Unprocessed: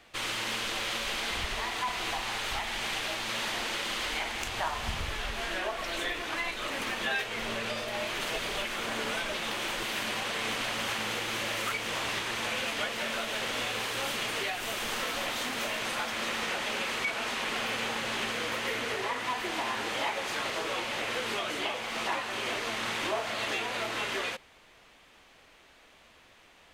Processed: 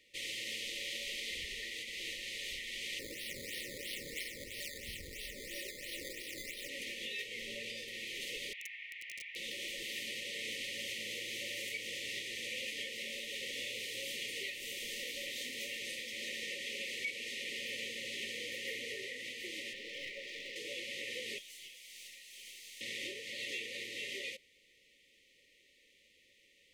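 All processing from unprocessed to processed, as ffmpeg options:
ffmpeg -i in.wav -filter_complex "[0:a]asettb=1/sr,asplit=3[link_01][link_02][link_03];[link_01]atrim=end=2.994[link_04];[link_02]atrim=start=2.99:end=6.69,asetpts=PTS-STARTPTS,afade=type=in:duration=0.004:curve=qsin,afade=type=out:start_time=3.696:duration=0.004:curve=qsin,lowpass=11000,acrusher=samples=11:mix=1:aa=0.000001:lfo=1:lforange=11:lforate=3[link_05];[link_03]atrim=start=6.686[link_06];[link_04][link_05]acrossfade=duration=0.004:curve1=hsin:curve2=qsin[link_07];[link_07][link_06]acrossfade=duration=0.004:curve1=qsin:curve2=hsin,asettb=1/sr,asplit=3[link_08][link_09][link_10];[link_08]atrim=end=8.534[link_11];[link_09]atrim=start=8.53:end=9.36,asetpts=PTS-STARTPTS,afade=type=in:duration=0.004:curve=qsin,afade=type=out:start_time=0.826:duration=0.004:curve=qsin,asuperpass=centerf=2000:order=4:qfactor=1.8,aeval=exprs='(mod(26.6*val(0)+1,2)-1)/26.6':channel_layout=same[link_12];[link_10]atrim=start=9.356[link_13];[link_11][link_12]acrossfade=duration=0.004:curve1=hsin:curve2=qsin[link_14];[link_14][link_13]acrossfade=duration=0.004:curve1=qsin:curve2=hsin,asettb=1/sr,asplit=3[link_15][link_16][link_17];[link_15]atrim=end=19.734[link_18];[link_16]atrim=start=19.73:end=20.56,asetpts=PTS-STARTPTS,afade=type=in:duration=0.004:curve=qsin,afade=type=out:start_time=0.826:duration=0.004:curve=qsin,highpass=230,lowpass=3800,aeval=exprs='clip(val(0),-1,0.015)':channel_layout=same[link_19];[link_17]atrim=start=20.556[link_20];[link_18][link_19]acrossfade=duration=0.004:curve1=hsin:curve2=qsin[link_21];[link_21][link_20]acrossfade=duration=0.004:curve1=qsin:curve2=hsin,asettb=1/sr,asplit=3[link_22][link_23][link_24];[link_22]atrim=end=21.384[link_25];[link_23]atrim=start=21.38:end=22.81,asetpts=PTS-STARTPTS,afade=type=in:duration=0.004:curve=qsin,afade=type=out:start_time=1.426:duration=0.004:curve=qsin,aderivative,aeval=exprs='clip(val(0),-1,0.00447)':channel_layout=same[link_26];[link_24]atrim=start=22.806[link_27];[link_25][link_26]acrossfade=duration=0.004:curve1=hsin:curve2=qsin[link_28];[link_28][link_27]acrossfade=duration=0.004:curve1=qsin:curve2=hsin,afftfilt=real='re*(1-between(b*sr/4096,590,1800))':imag='im*(1-between(b*sr/4096,590,1800))':win_size=4096:overlap=0.75,lowshelf=frequency=360:gain=-10.5,volume=-6.5dB" out.wav

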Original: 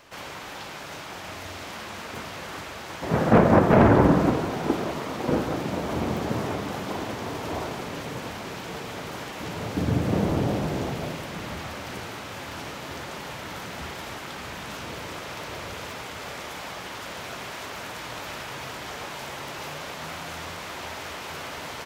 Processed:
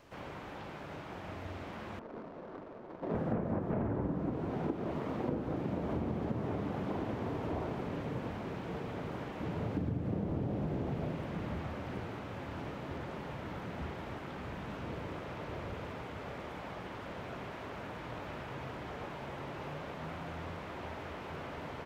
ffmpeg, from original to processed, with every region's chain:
ffmpeg -i in.wav -filter_complex "[0:a]asettb=1/sr,asplit=3[link_01][link_02][link_03];[link_01]atrim=end=1.994[link_04];[link_02]atrim=start=1.99:end=3.15,asetpts=PTS-STARTPTS,afade=type=in:duration=0.004:curve=qsin,afade=type=out:start_time=1.156:duration=0.004:curve=qsin,highpass=250,bandreject=frequency=810:width=16,adynamicsmooth=sensitivity=2:basefreq=500[link_05];[link_03]atrim=start=3.146[link_06];[link_04][link_05]acrossfade=duration=0.004:curve1=hsin:curve2=qsin[link_07];[link_07][link_06]acrossfade=duration=0.004:curve1=qsin:curve2=hsin,acrossover=split=3300[link_08][link_09];[link_09]acompressor=threshold=-57dB:ratio=4:attack=1:release=60[link_10];[link_08][link_10]amix=inputs=2:normalize=0,tiltshelf=frequency=710:gain=5.5,acompressor=threshold=-25dB:ratio=10,volume=-6dB" out.wav

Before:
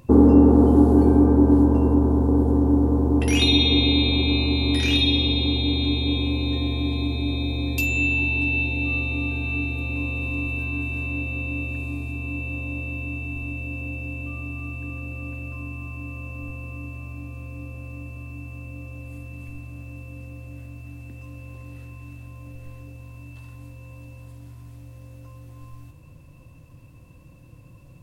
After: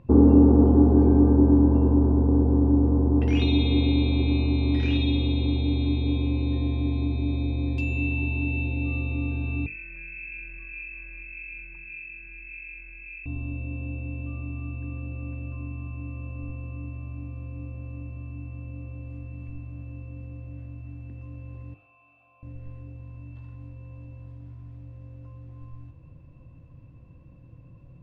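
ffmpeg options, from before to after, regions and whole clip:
ffmpeg -i in.wav -filter_complex "[0:a]asettb=1/sr,asplit=3[link_01][link_02][link_03];[link_01]atrim=end=9.664[link_04];[link_02]atrim=start=9.66:end=13.26,asetpts=PTS-STARTPTS,afade=type=in:duration=0.004:curve=qsin,afade=type=out:start_time=3.596:duration=0.004:curve=qsin,acrossover=split=860[link_05][link_06];[link_05]aeval=exprs='val(0)*(1-0.5/2+0.5/2*cos(2*PI*1.7*n/s))':channel_layout=same[link_07];[link_06]aeval=exprs='val(0)*(1-0.5/2-0.5/2*cos(2*PI*1.7*n/s))':channel_layout=same[link_08];[link_07][link_08]amix=inputs=2:normalize=0,lowpass=frequency=2300:width_type=q:width=0.5098,lowpass=frequency=2300:width_type=q:width=0.6013,lowpass=frequency=2300:width_type=q:width=0.9,lowpass=frequency=2300:width_type=q:width=2.563,afreqshift=-2700[link_09];[link_03]atrim=start=13.256[link_10];[link_04][link_09]acrossfade=duration=0.004:curve1=hsin:curve2=qsin[link_11];[link_11][link_10]acrossfade=duration=0.004:curve1=qsin:curve2=hsin,asettb=1/sr,asplit=3[link_12][link_13][link_14];[link_12]atrim=end=21.744[link_15];[link_13]atrim=start=21.74:end=22.43,asetpts=PTS-STARTPTS,afade=type=in:duration=0.004:curve=qsin,afade=type=out:start_time=0.686:duration=0.004:curve=qsin,asplit=3[link_16][link_17][link_18];[link_16]bandpass=frequency=730:width_type=q:width=8,volume=0dB[link_19];[link_17]bandpass=frequency=1090:width_type=q:width=8,volume=-6dB[link_20];[link_18]bandpass=frequency=2440:width_type=q:width=8,volume=-9dB[link_21];[link_19][link_20][link_21]amix=inputs=3:normalize=0,tiltshelf=frequency=830:gain=-8,acontrast=48[link_22];[link_14]atrim=start=22.426[link_23];[link_15][link_22]acrossfade=duration=0.004:curve1=hsin:curve2=qsin[link_24];[link_24][link_23]acrossfade=duration=0.004:curve1=qsin:curve2=hsin,lowpass=2700,lowshelf=frequency=490:gain=8,bandreject=frequency=50:width_type=h:width=6,bandreject=frequency=100:width_type=h:width=6,bandreject=frequency=150:width_type=h:width=6,bandreject=frequency=200:width_type=h:width=6,bandreject=frequency=250:width_type=h:width=6,bandreject=frequency=300:width_type=h:width=6,bandreject=frequency=350:width_type=h:width=6,bandreject=frequency=400:width_type=h:width=6,bandreject=frequency=450:width_type=h:width=6,volume=-7.5dB" out.wav

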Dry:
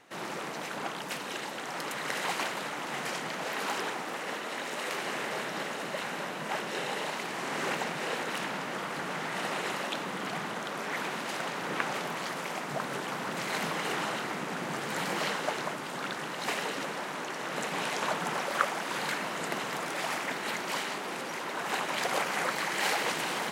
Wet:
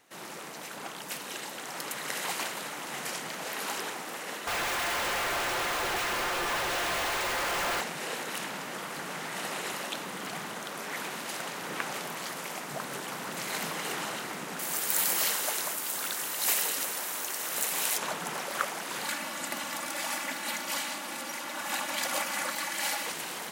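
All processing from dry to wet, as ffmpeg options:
ffmpeg -i in.wav -filter_complex "[0:a]asettb=1/sr,asplit=3[link_01][link_02][link_03];[link_01]atrim=end=4.474[link_04];[link_02]atrim=start=4.47:end=7.81,asetpts=PTS-STARTPTS,afade=type=in:duration=0.004:curve=qsin,afade=type=out:start_time=3.336:duration=0.004:curve=qsin,aecho=1:1:5.8:0.58,atrim=end_sample=147294,aeval=exprs='val(0)*sin(2*PI*190*n/s)':channel_layout=same,asplit=2[link_05][link_06];[link_06]highpass=frequency=720:poles=1,volume=37dB,asoftclip=type=tanh:threshold=-20dB[link_07];[link_05][link_07]amix=inputs=2:normalize=0,lowpass=frequency=2100:poles=1,volume=-6dB[link_08];[link_03]atrim=start=7.806[link_09];[link_04][link_08]acrossfade=duration=0.004:curve1=hsin:curve2=qsin[link_10];[link_10][link_09]acrossfade=duration=0.004:curve1=qsin:curve2=hsin,asettb=1/sr,asplit=3[link_11][link_12][link_13];[link_11]atrim=end=14.594[link_14];[link_12]atrim=start=14.59:end=17.98,asetpts=PTS-STARTPTS,afade=type=in:duration=0.004:curve=qsin,afade=type=out:start_time=3.386:duration=0.004:curve=qsin,aemphasis=mode=production:type=bsi,asoftclip=type=hard:threshold=-21dB[link_15];[link_13]atrim=start=17.976[link_16];[link_14][link_15]acrossfade=duration=0.004:curve1=hsin:curve2=qsin[link_17];[link_17][link_16]acrossfade=duration=0.004:curve1=qsin:curve2=hsin,asettb=1/sr,asplit=3[link_18][link_19][link_20];[link_18]atrim=end=19.044[link_21];[link_19]atrim=start=19.04:end=23.07,asetpts=PTS-STARTPTS,afade=type=in:duration=0.004:curve=qsin,afade=type=out:start_time=4.026:duration=0.004:curve=qsin,highpass=43,equalizer=frequency=420:width_type=o:width=0.34:gain=-12.5,aecho=1:1:3.5:0.6,atrim=end_sample=177723[link_22];[link_20]atrim=start=23.066[link_23];[link_21][link_22]acrossfade=duration=0.004:curve1=hsin:curve2=qsin[link_24];[link_24][link_23]acrossfade=duration=0.004:curve1=qsin:curve2=hsin,aemphasis=mode=production:type=50kf,dynaudnorm=framelen=160:gausssize=13:maxgain=3dB,volume=-6.5dB" out.wav

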